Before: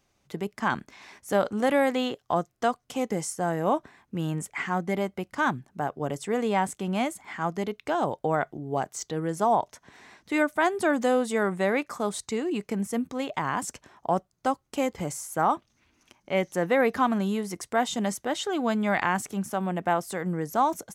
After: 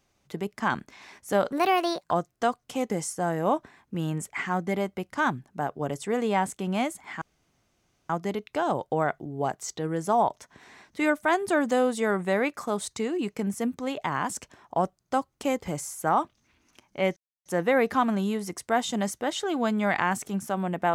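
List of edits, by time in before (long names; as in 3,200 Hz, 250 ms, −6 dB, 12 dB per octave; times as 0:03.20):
0:01.52–0:02.31: play speed 135%
0:07.42: splice in room tone 0.88 s
0:16.49: splice in silence 0.29 s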